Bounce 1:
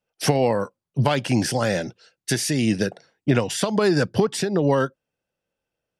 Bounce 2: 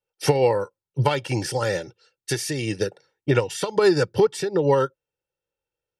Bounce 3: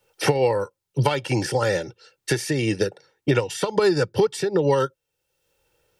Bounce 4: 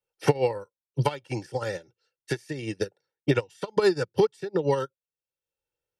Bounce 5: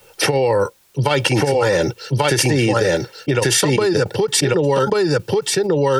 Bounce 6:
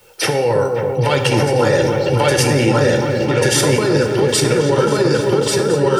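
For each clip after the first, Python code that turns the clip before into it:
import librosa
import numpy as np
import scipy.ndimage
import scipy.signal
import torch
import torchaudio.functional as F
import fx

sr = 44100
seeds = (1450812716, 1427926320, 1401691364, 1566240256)

y1 = x + 0.7 * np.pad(x, (int(2.2 * sr / 1000.0), 0))[:len(x)]
y1 = fx.upward_expand(y1, sr, threshold_db=-29.0, expansion=1.5)
y2 = fx.band_squash(y1, sr, depth_pct=70)
y3 = fx.upward_expand(y2, sr, threshold_db=-30.0, expansion=2.5)
y4 = y3 + 10.0 ** (-4.0 / 20.0) * np.pad(y3, (int(1139 * sr / 1000.0), 0))[:len(y3)]
y4 = fx.env_flatten(y4, sr, amount_pct=100)
y5 = fx.echo_opening(y4, sr, ms=272, hz=750, octaves=1, feedback_pct=70, wet_db=-3)
y5 = fx.rev_plate(y5, sr, seeds[0], rt60_s=0.89, hf_ratio=0.9, predelay_ms=0, drr_db=5.5)
y5 = y5 * librosa.db_to_amplitude(-1.0)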